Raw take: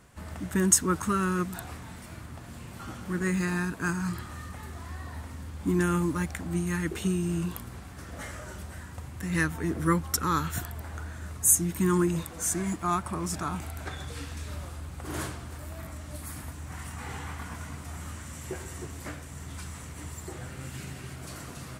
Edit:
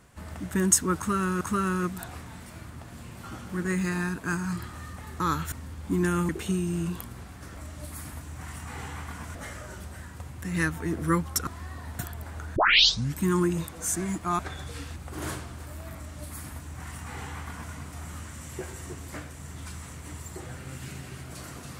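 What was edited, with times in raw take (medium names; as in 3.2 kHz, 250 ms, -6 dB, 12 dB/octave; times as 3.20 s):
0.97–1.41 s: loop, 2 plays
4.76–5.28 s: swap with 10.25–10.57 s
6.05–6.85 s: delete
11.14 s: tape start 0.65 s
12.97–13.80 s: delete
14.37–14.88 s: delete
15.88–17.66 s: copy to 8.13 s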